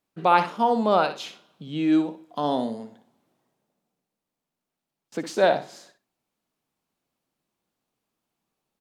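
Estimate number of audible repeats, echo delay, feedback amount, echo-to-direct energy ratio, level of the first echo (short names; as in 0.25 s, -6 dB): 2, 61 ms, 17%, -10.5 dB, -10.5 dB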